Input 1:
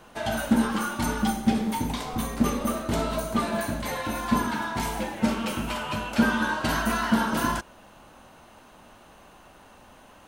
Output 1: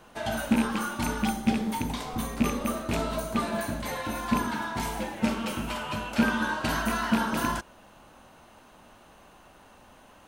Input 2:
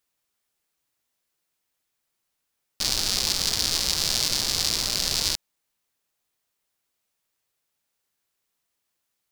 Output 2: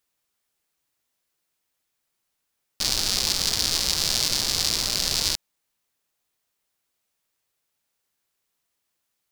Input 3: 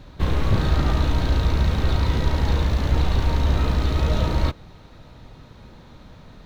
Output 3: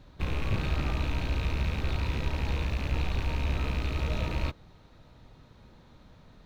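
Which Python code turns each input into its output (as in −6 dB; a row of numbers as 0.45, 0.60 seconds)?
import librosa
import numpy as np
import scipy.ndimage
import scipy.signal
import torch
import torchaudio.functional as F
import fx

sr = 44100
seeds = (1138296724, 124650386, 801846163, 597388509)

y = fx.rattle_buzz(x, sr, strikes_db=-24.0, level_db=-18.0)
y = y * 10.0 ** (-30 / 20.0) / np.sqrt(np.mean(np.square(y)))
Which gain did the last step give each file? −2.5, +1.0, −9.5 decibels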